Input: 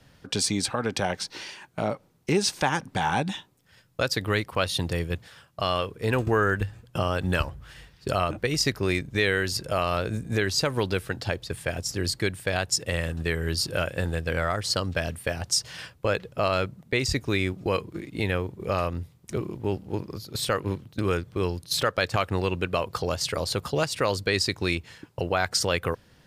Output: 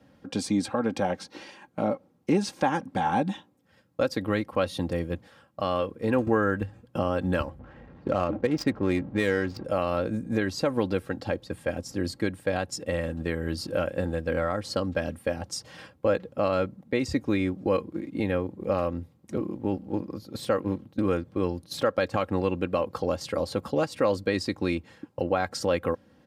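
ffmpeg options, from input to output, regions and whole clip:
-filter_complex "[0:a]asettb=1/sr,asplit=3[a][b][c];[a]atrim=end=7.594[d];[b]atrim=start=7.59:end=9.65,asetpts=PTS-STARTPTS,afade=t=in:d=0.004:c=qsin,afade=t=out:st=2.056:d=0.004:c=qsin,aeval=exprs='val(0)+0.5*0.0119*sgn(val(0))':c=same,adynamicsmooth=sensitivity=2.5:basefreq=1.1k[e];[c]atrim=start=9.646[f];[d][e]acrossfade=d=0.004:c1=hsin:c2=qsin[g];[g][f]acrossfade=d=0.004:c1=qsin:c2=hsin,highpass=120,tiltshelf=f=1.4k:g=7.5,aecho=1:1:3.7:0.55,volume=-5dB"

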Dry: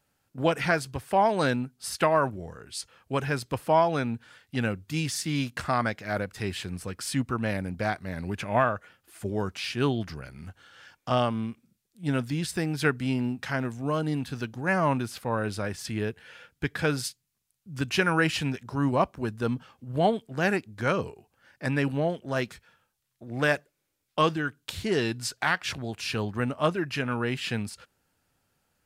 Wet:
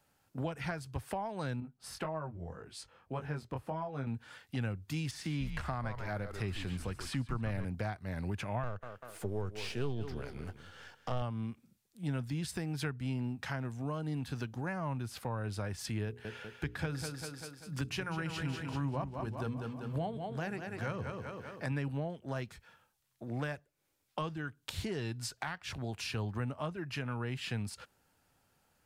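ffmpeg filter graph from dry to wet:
-filter_complex "[0:a]asettb=1/sr,asplit=3[a][b][c];[a]atrim=end=1.604[d];[b]atrim=start=1.6:end=4.07,asetpts=PTS-STARTPTS,afade=t=in:d=0.004:c=qsin,afade=t=out:st=2.466:d=0.004:c=qsin,highshelf=f=2.5k:g=-10.5,flanger=delay=19:depth=4.2:speed=1.8[e];[c]atrim=start=4.066[f];[d][e]acrossfade=d=0.004:c1=hsin:c2=qsin[g];[g][f]acrossfade=d=0.004:c1=qsin:c2=hsin,asettb=1/sr,asplit=3[h][i][j];[h]atrim=end=5.114[k];[i]atrim=start=5.11:end=7.65,asetpts=PTS-STARTPTS,afade=t=in:d=0.004:c=qsin,afade=t=out:st=2.536:d=0.004:c=qsin,acrossover=split=3500[l][m];[m]acompressor=threshold=-45dB:ratio=4:attack=1:release=60[n];[l][n]amix=inputs=2:normalize=0,asplit=5[o][p][q][r][s];[p]adelay=141,afreqshift=-110,volume=-10dB[t];[q]adelay=282,afreqshift=-220,volume=-19.4dB[u];[r]adelay=423,afreqshift=-330,volume=-28.7dB[v];[s]adelay=564,afreqshift=-440,volume=-38.1dB[w];[o][t][u][v][w]amix=inputs=5:normalize=0,atrim=end_sample=112014[x];[j]atrim=start=7.646[y];[k][x]acrossfade=d=0.004:c1=hsin:c2=qsin[z];[z][y]acrossfade=d=0.004:c1=qsin:c2=hsin,asettb=1/sr,asplit=3[aa][ab][ac];[aa]atrim=end=8.634[ad];[ab]atrim=start=8.63:end=11.22,asetpts=PTS-STARTPTS,afade=t=in:d=0.004:c=qsin,afade=t=out:st=2.586:d=0.004:c=qsin,aeval=exprs='if(lt(val(0),0),0.447*val(0),val(0))':c=same,equalizer=f=440:t=o:w=0.52:g=8.5,aecho=1:1:196|392|588:0.2|0.0599|0.018,atrim=end_sample=114219[ae];[ac]atrim=start=11.216[af];[ad][ae]acrossfade=d=0.004:c1=hsin:c2=qsin[ag];[ag][af]acrossfade=d=0.004:c1=qsin:c2=hsin,asettb=1/sr,asplit=3[ah][ai][aj];[ah]atrim=end=16.054[ak];[ai]atrim=start=16.05:end=21.72,asetpts=PTS-STARTPTS,afade=t=in:d=0.004:c=qsin,afade=t=out:st=5.666:d=0.004:c=qsin,bandreject=f=60:t=h:w=6,bandreject=f=120:t=h:w=6,bandreject=f=180:t=h:w=6,bandreject=f=240:t=h:w=6,bandreject=f=300:t=h:w=6,bandreject=f=360:t=h:w=6,bandreject=f=420:t=h:w=6,bandreject=f=480:t=h:w=6,aecho=1:1:195|390|585|780|975:0.398|0.167|0.0702|0.0295|0.0124,atrim=end_sample=250047[al];[aj]atrim=start=21.716[am];[ak][al]acrossfade=d=0.004:c1=hsin:c2=qsin[an];[an][am]acrossfade=d=0.004:c1=qsin:c2=hsin,equalizer=f=860:w=1.8:g=3.5,acrossover=split=120[ao][ap];[ap]acompressor=threshold=-38dB:ratio=5[aq];[ao][aq]amix=inputs=2:normalize=0"

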